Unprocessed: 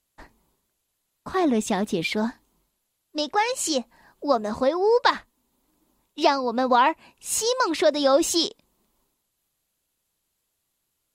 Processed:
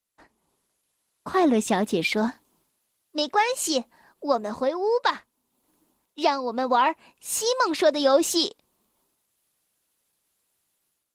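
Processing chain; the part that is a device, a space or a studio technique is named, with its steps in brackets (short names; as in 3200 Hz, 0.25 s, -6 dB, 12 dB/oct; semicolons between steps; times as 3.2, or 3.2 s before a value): 2.28–3.5 HPF 53 Hz 24 dB/oct; video call (HPF 180 Hz 6 dB/oct; AGC gain up to 11 dB; gain -7 dB; Opus 20 kbps 48000 Hz)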